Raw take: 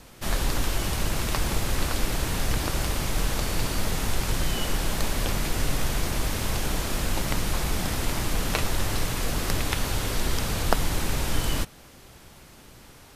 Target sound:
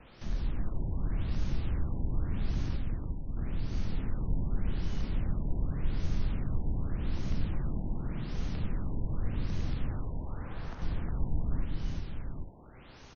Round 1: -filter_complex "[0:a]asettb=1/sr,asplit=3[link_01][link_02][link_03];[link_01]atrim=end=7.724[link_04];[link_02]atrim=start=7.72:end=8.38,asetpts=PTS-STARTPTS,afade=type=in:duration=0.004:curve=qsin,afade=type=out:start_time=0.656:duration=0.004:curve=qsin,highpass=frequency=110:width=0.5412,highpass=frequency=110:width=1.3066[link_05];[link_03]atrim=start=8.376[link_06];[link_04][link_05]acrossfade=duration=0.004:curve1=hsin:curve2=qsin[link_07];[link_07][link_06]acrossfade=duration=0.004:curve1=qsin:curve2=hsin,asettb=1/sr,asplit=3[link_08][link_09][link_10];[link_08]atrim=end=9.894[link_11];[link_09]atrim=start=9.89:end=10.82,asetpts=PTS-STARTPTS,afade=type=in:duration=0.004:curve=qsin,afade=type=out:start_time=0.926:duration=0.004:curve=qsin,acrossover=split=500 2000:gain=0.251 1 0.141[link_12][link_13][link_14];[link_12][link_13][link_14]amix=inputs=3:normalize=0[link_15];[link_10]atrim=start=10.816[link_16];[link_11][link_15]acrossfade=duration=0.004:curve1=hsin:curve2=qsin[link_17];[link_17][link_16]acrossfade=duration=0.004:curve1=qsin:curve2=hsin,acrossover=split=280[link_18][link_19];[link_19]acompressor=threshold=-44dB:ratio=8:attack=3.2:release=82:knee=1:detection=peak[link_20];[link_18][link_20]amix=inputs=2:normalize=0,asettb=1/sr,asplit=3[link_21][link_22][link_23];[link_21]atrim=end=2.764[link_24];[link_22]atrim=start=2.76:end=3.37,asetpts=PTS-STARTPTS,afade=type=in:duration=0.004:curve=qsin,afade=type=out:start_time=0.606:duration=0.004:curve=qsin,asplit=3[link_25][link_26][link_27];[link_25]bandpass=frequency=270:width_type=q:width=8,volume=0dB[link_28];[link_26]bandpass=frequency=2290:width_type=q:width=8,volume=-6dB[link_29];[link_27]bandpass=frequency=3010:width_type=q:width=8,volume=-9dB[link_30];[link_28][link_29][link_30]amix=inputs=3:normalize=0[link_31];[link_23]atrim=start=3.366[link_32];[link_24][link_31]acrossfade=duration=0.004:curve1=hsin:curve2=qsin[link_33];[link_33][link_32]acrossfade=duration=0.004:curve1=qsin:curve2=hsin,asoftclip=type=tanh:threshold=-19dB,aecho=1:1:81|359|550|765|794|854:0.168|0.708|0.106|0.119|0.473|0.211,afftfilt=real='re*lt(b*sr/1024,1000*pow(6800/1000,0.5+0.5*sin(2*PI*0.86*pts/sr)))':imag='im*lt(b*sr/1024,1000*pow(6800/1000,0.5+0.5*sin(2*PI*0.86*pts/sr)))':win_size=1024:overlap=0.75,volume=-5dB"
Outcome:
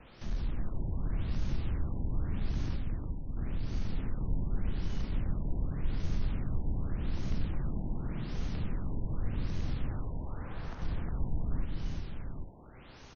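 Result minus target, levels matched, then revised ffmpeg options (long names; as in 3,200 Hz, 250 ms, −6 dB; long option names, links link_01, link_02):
soft clipping: distortion +13 dB
-filter_complex "[0:a]asettb=1/sr,asplit=3[link_01][link_02][link_03];[link_01]atrim=end=7.724[link_04];[link_02]atrim=start=7.72:end=8.38,asetpts=PTS-STARTPTS,afade=type=in:duration=0.004:curve=qsin,afade=type=out:start_time=0.656:duration=0.004:curve=qsin,highpass=frequency=110:width=0.5412,highpass=frequency=110:width=1.3066[link_05];[link_03]atrim=start=8.376[link_06];[link_04][link_05]acrossfade=duration=0.004:curve1=hsin:curve2=qsin[link_07];[link_07][link_06]acrossfade=duration=0.004:curve1=qsin:curve2=hsin,asettb=1/sr,asplit=3[link_08][link_09][link_10];[link_08]atrim=end=9.894[link_11];[link_09]atrim=start=9.89:end=10.82,asetpts=PTS-STARTPTS,afade=type=in:duration=0.004:curve=qsin,afade=type=out:start_time=0.926:duration=0.004:curve=qsin,acrossover=split=500 2000:gain=0.251 1 0.141[link_12][link_13][link_14];[link_12][link_13][link_14]amix=inputs=3:normalize=0[link_15];[link_10]atrim=start=10.816[link_16];[link_11][link_15]acrossfade=duration=0.004:curve1=hsin:curve2=qsin[link_17];[link_17][link_16]acrossfade=duration=0.004:curve1=qsin:curve2=hsin,acrossover=split=280[link_18][link_19];[link_19]acompressor=threshold=-44dB:ratio=8:attack=3.2:release=82:knee=1:detection=peak[link_20];[link_18][link_20]amix=inputs=2:normalize=0,asettb=1/sr,asplit=3[link_21][link_22][link_23];[link_21]atrim=end=2.764[link_24];[link_22]atrim=start=2.76:end=3.37,asetpts=PTS-STARTPTS,afade=type=in:duration=0.004:curve=qsin,afade=type=out:start_time=0.606:duration=0.004:curve=qsin,asplit=3[link_25][link_26][link_27];[link_25]bandpass=frequency=270:width_type=q:width=8,volume=0dB[link_28];[link_26]bandpass=frequency=2290:width_type=q:width=8,volume=-6dB[link_29];[link_27]bandpass=frequency=3010:width_type=q:width=8,volume=-9dB[link_30];[link_28][link_29][link_30]amix=inputs=3:normalize=0[link_31];[link_23]atrim=start=3.366[link_32];[link_24][link_31]acrossfade=duration=0.004:curve1=hsin:curve2=qsin[link_33];[link_33][link_32]acrossfade=duration=0.004:curve1=qsin:curve2=hsin,asoftclip=type=tanh:threshold=-11dB,aecho=1:1:81|359|550|765|794|854:0.168|0.708|0.106|0.119|0.473|0.211,afftfilt=real='re*lt(b*sr/1024,1000*pow(6800/1000,0.5+0.5*sin(2*PI*0.86*pts/sr)))':imag='im*lt(b*sr/1024,1000*pow(6800/1000,0.5+0.5*sin(2*PI*0.86*pts/sr)))':win_size=1024:overlap=0.75,volume=-5dB"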